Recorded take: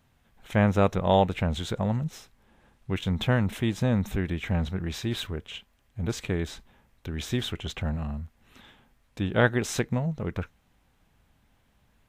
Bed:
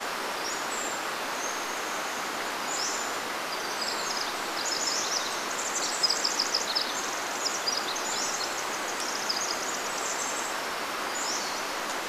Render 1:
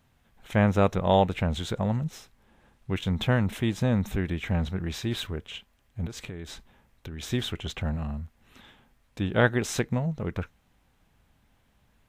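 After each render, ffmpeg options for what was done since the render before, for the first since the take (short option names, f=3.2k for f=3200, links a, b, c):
-filter_complex "[0:a]asettb=1/sr,asplit=3[a][b][c];[a]atrim=end=6.064[d];[b]atrim=start=6.06:end=7.23,asetpts=PTS-STARTPTS,afade=t=in:d=0.004:c=qsin,afade=t=out:st=1.166:d=0.004:c=qsin,acompressor=threshold=-34dB:ratio=6:attack=3.2:release=140:knee=1:detection=peak[e];[c]atrim=start=7.226[f];[d][e]acrossfade=d=0.004:c1=hsin:c2=qsin[g];[g][f]acrossfade=d=0.004:c1=qsin:c2=hsin"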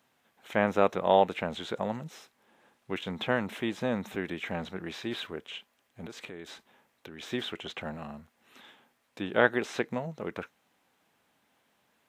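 -filter_complex "[0:a]highpass=300,acrossover=split=3700[a][b];[b]acompressor=threshold=-51dB:ratio=4:attack=1:release=60[c];[a][c]amix=inputs=2:normalize=0"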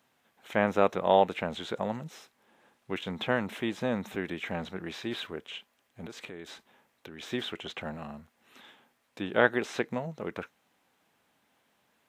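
-af anull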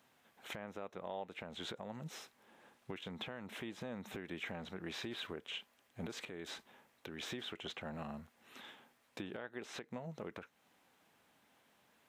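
-af "acompressor=threshold=-37dB:ratio=4,alimiter=level_in=7.5dB:limit=-24dB:level=0:latency=1:release=290,volume=-7.5dB"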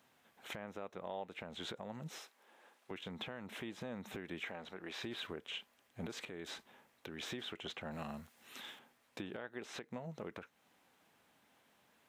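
-filter_complex "[0:a]asettb=1/sr,asplit=3[a][b][c];[a]atrim=end=2.184[d];[b]atrim=start=2.18:end=2.91,asetpts=PTS-STARTPTS,afade=t=in:d=0.004:c=qsin,afade=t=out:st=0.726:d=0.004:c=qsin,highpass=390[e];[c]atrim=start=2.906[f];[d][e]acrossfade=d=0.004:c1=hsin:c2=qsin[g];[g][f]acrossfade=d=0.004:c1=qsin:c2=hsin,asettb=1/sr,asplit=3[h][i][j];[h]atrim=end=4.454[k];[i]atrim=start=4.45:end=5.01,asetpts=PTS-STARTPTS,afade=t=in:d=0.004:c=qsin,afade=t=out:st=0.556:d=0.004:c=qsin,bass=f=250:g=-11,treble=f=4k:g=-3[l];[j]atrim=start=5.006[m];[k][l]acrossfade=d=0.004:c1=hsin:c2=qsin[n];[n][m]acrossfade=d=0.004:c1=qsin:c2=hsin,asettb=1/sr,asplit=3[o][p][q];[o]atrim=end=7.914[r];[p]atrim=start=7.91:end=8.79,asetpts=PTS-STARTPTS,afade=t=in:d=0.004:c=qsin,afade=t=out:st=0.876:d=0.004:c=qsin,highshelf=f=2.8k:g=9[s];[q]atrim=start=8.786[t];[r][s]acrossfade=d=0.004:c1=hsin:c2=qsin[u];[u][t]acrossfade=d=0.004:c1=qsin:c2=hsin"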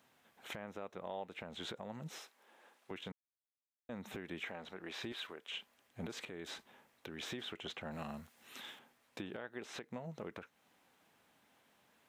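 -filter_complex "[0:a]asettb=1/sr,asplit=3[a][b][c];[a]atrim=end=5.124[d];[b]atrim=start=5.12:end=5.53,asetpts=PTS-STARTPTS,afade=t=in:d=0.004:c=qsin,afade=t=out:st=0.406:d=0.004:c=qsin,highpass=f=640:p=1[e];[c]atrim=start=5.526[f];[d][e]acrossfade=d=0.004:c1=hsin:c2=qsin[g];[g][f]acrossfade=d=0.004:c1=qsin:c2=hsin,asplit=3[h][i][j];[h]atrim=end=3.12,asetpts=PTS-STARTPTS,afade=t=out:st=3.116:d=0.004:c=hsin[k];[i]atrim=start=3.12:end=3.89,asetpts=PTS-STARTPTS,volume=0[l];[j]atrim=start=3.89,asetpts=PTS-STARTPTS,afade=t=in:d=0.004:c=hsin[m];[k][l][m]concat=n=3:v=0:a=1"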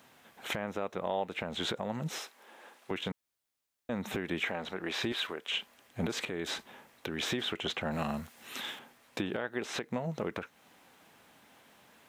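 -af "volume=10.5dB"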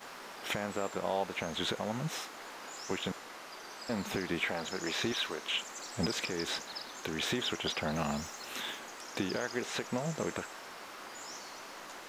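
-filter_complex "[1:a]volume=-15dB[a];[0:a][a]amix=inputs=2:normalize=0"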